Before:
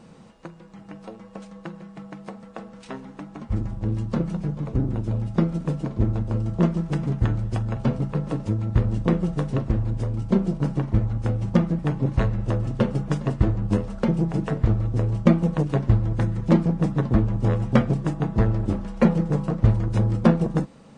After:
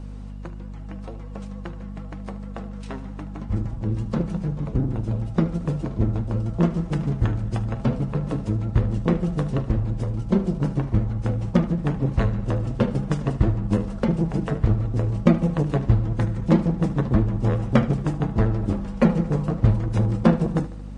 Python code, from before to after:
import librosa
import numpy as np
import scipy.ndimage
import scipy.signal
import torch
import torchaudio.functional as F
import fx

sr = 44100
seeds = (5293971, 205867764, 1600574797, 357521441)

y = fx.add_hum(x, sr, base_hz=50, snr_db=12)
y = fx.vibrato(y, sr, rate_hz=11.0, depth_cents=51.0)
y = fx.echo_feedback(y, sr, ms=75, feedback_pct=56, wet_db=-16)